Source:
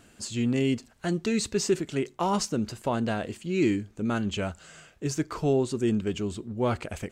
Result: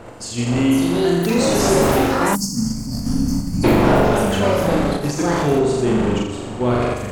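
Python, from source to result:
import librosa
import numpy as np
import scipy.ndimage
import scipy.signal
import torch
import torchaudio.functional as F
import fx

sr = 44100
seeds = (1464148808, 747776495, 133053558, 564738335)

p1 = fx.dmg_wind(x, sr, seeds[0], corner_hz=640.0, level_db=-31.0)
p2 = p1 + fx.room_flutter(p1, sr, wall_m=7.0, rt60_s=1.3, dry=0)
p3 = fx.echo_pitch(p2, sr, ms=560, semitones=6, count=2, db_per_echo=-3.0)
p4 = fx.spec_box(p3, sr, start_s=2.35, length_s=1.29, low_hz=300.0, high_hz=4300.0, gain_db=-27)
p5 = fx.level_steps(p4, sr, step_db=13)
y = p4 + F.gain(torch.from_numpy(p5), -0.5).numpy()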